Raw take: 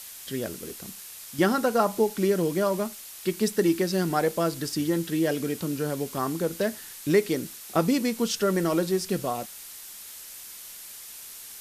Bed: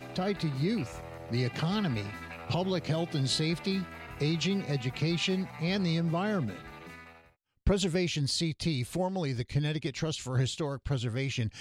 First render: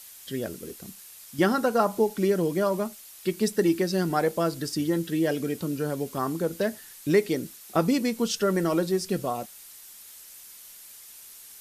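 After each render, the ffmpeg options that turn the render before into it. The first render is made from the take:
-af "afftdn=nr=6:nf=-43"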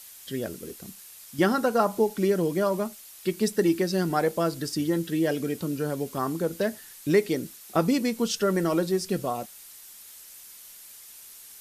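-af anull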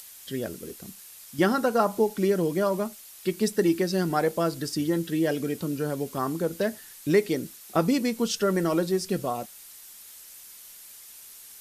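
-af "acompressor=mode=upward:threshold=0.00562:ratio=2.5"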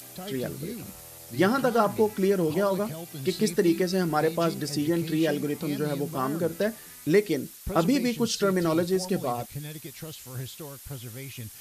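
-filter_complex "[1:a]volume=0.398[s0];[0:a][s0]amix=inputs=2:normalize=0"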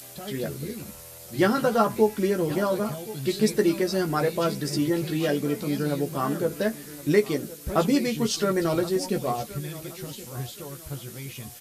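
-filter_complex "[0:a]asplit=2[s0][s1];[s1]adelay=14,volume=0.562[s2];[s0][s2]amix=inputs=2:normalize=0,aecho=1:1:1072|2144|3216:0.133|0.0507|0.0193"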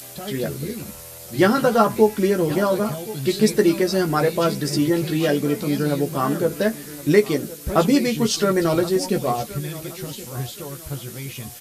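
-af "volume=1.78"

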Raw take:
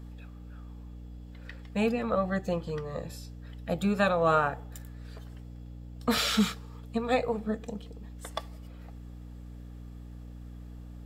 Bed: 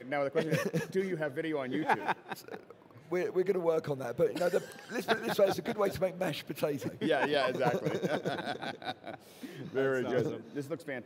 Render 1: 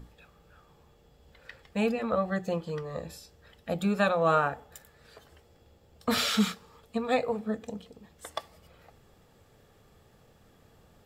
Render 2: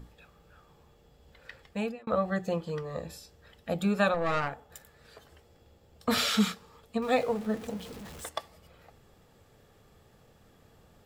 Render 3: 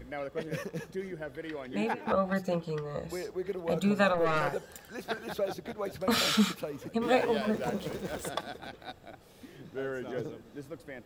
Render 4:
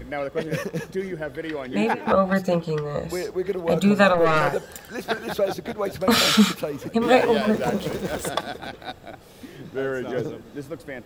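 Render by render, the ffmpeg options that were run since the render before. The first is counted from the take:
-af "bandreject=f=60:t=h:w=6,bandreject=f=120:t=h:w=6,bandreject=f=180:t=h:w=6,bandreject=f=240:t=h:w=6,bandreject=f=300:t=h:w=6"
-filter_complex "[0:a]asettb=1/sr,asplit=3[s0][s1][s2];[s0]atrim=end=4.144[s3];[s1]atrim=start=4.14:end=4.7,asetpts=PTS-STARTPTS,afade=t=in:d=0.004:c=qsin,afade=t=out:st=0.556:d=0.004:c=qsin,aeval=exprs='(tanh(14.1*val(0)+0.65)-tanh(0.65))/14.1':c=same[s4];[s2]atrim=start=4.696[s5];[s3][s4]acrossfade=d=0.004:c1=hsin:c2=qsin[s6];[s6][s5]acrossfade=d=0.004:c1=qsin:c2=hsin,asettb=1/sr,asplit=3[s7][s8][s9];[s7]atrim=end=7.024[s10];[s8]atrim=start=7.02:end=8.29,asetpts=PTS-STARTPTS,afade=t=in:d=0.004:c=qsin,afade=t=out:st=1.266:d=0.004:c=qsin,aeval=exprs='val(0)+0.5*0.00891*sgn(val(0))':c=same[s11];[s9]atrim=start=8.286[s12];[s10][s11]acrossfade=d=0.004:c1=hsin:c2=qsin[s13];[s13][s12]acrossfade=d=0.004:c1=qsin:c2=hsin,asplit=2[s14][s15];[s14]atrim=end=2.07,asetpts=PTS-STARTPTS,afade=t=out:st=1.64:d=0.43[s16];[s15]atrim=start=2.07,asetpts=PTS-STARTPTS,afade=t=in:d=0.004:c=hsin[s17];[s16][s17]concat=n=2:v=0:a=1"
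-filter_complex "[1:a]volume=0.531[s0];[0:a][s0]amix=inputs=2:normalize=0"
-af "volume=2.82"

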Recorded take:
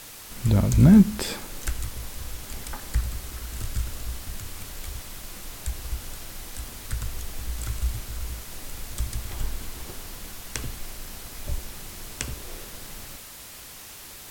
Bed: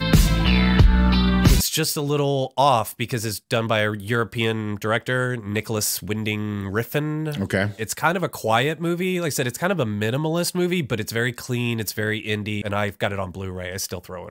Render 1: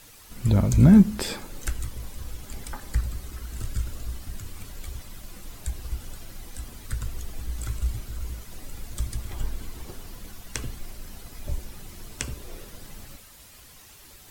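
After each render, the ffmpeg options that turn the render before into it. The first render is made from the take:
-af "afftdn=nr=9:nf=-43"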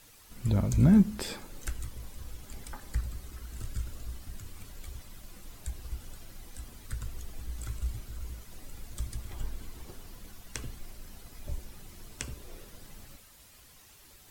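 -af "volume=0.473"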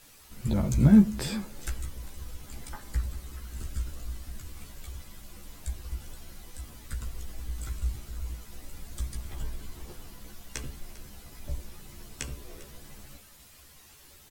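-filter_complex "[0:a]asplit=2[s0][s1];[s1]adelay=14,volume=0.708[s2];[s0][s2]amix=inputs=2:normalize=0,aecho=1:1:399:0.119"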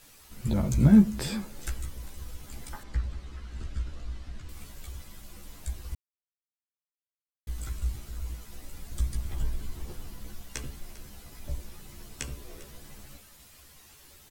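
-filter_complex "[0:a]asettb=1/sr,asplit=3[s0][s1][s2];[s0]atrim=end=2.834[s3];[s1]atrim=start=2.83:end=4.49,asetpts=PTS-STARTPTS,afade=t=in:d=0.004:c=qsin,afade=t=out:st=1.656:d=0.004:c=qsin,lowpass=4400[s4];[s2]atrim=start=4.486[s5];[s3][s4]acrossfade=d=0.004:c1=hsin:c2=qsin[s6];[s6][s5]acrossfade=d=0.004:c1=qsin:c2=hsin,asettb=1/sr,asplit=3[s7][s8][s9];[s7]atrim=end=8.914[s10];[s8]atrim=start=8.91:end=10.45,asetpts=PTS-STARTPTS,afade=t=in:d=0.004:c=qsin,afade=t=out:st=1.536:d=0.004:c=qsin,lowshelf=f=230:g=5.5[s11];[s9]atrim=start=10.446[s12];[s10][s11]acrossfade=d=0.004:c1=hsin:c2=qsin[s13];[s13][s12]acrossfade=d=0.004:c1=qsin:c2=hsin,asplit=3[s14][s15][s16];[s14]atrim=end=5.95,asetpts=PTS-STARTPTS,afade=t=out:st=5.946:d=0.004:c=hsin[s17];[s15]atrim=start=5.95:end=7.47,asetpts=PTS-STARTPTS,volume=0[s18];[s16]atrim=start=7.47,asetpts=PTS-STARTPTS,afade=t=in:d=0.004:c=hsin[s19];[s17][s18][s19]concat=n=3:v=0:a=1"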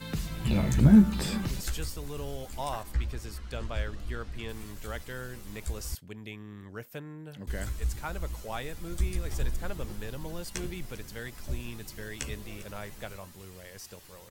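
-filter_complex "[1:a]volume=0.126[s0];[0:a][s0]amix=inputs=2:normalize=0"

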